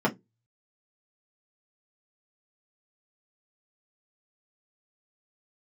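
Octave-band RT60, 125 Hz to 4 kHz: 0.40, 0.25, 0.20, 0.15, 0.10, 0.10 s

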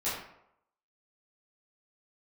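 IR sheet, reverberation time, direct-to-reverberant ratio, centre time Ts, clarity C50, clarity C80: 0.80 s, -12.0 dB, 57 ms, 2.0 dB, 5.0 dB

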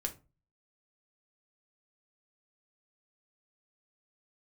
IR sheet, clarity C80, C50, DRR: 22.5 dB, 14.5 dB, 3.0 dB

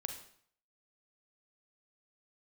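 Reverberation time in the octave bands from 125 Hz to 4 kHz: 0.60, 0.55, 0.55, 0.60, 0.55, 0.55 s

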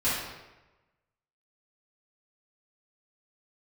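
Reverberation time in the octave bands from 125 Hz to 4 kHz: 1.2, 1.0, 1.1, 1.0, 1.0, 0.80 s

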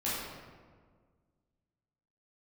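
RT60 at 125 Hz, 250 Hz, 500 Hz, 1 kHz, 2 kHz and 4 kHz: 2.2, 2.0, 1.8, 1.5, 1.2, 0.90 s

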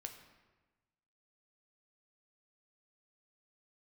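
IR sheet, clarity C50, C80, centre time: 8.5 dB, 10.0 dB, 21 ms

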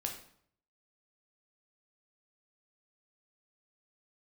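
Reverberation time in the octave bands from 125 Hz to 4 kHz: 0.80, 0.70, 0.65, 0.60, 0.55, 0.50 s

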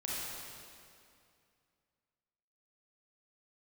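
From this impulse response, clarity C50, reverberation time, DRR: -4.5 dB, 2.4 s, -7.0 dB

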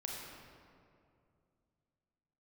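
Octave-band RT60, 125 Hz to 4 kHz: 3.3, 3.0, 2.6, 2.2, 1.8, 1.3 s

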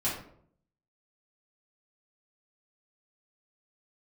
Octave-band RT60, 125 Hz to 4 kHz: 0.80, 0.75, 0.70, 0.55, 0.45, 0.35 s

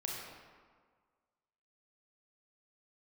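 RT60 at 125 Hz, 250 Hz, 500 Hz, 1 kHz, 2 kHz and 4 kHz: 1.5, 1.6, 1.6, 1.7, 1.3, 1.0 s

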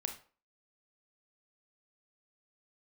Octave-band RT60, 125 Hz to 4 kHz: 0.30, 0.40, 0.40, 0.40, 0.35, 0.30 s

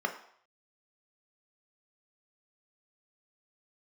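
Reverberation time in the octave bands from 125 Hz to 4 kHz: 0.40, 0.45, 0.60, 0.65, 0.60, 0.60 s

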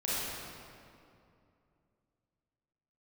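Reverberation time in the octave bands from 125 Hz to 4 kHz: 3.2, 3.1, 2.7, 2.4, 2.0, 1.6 s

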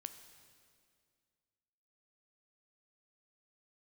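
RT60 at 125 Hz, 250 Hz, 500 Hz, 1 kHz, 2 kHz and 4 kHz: 2.4, 2.4, 2.3, 2.0, 2.0, 2.0 s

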